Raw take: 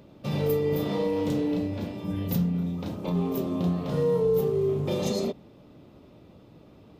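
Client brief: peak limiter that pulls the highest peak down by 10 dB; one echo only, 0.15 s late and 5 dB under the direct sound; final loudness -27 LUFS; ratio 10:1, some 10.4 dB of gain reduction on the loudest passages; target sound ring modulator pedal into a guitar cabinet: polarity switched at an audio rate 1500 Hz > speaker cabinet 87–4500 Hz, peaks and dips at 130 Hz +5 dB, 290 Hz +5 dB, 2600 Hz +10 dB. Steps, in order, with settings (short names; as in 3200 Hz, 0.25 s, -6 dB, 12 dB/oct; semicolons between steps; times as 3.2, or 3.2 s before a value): compressor 10:1, threshold -31 dBFS; limiter -33 dBFS; echo 0.15 s -5 dB; polarity switched at an audio rate 1500 Hz; speaker cabinet 87–4500 Hz, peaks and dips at 130 Hz +5 dB, 290 Hz +5 dB, 2600 Hz +10 dB; gain +9.5 dB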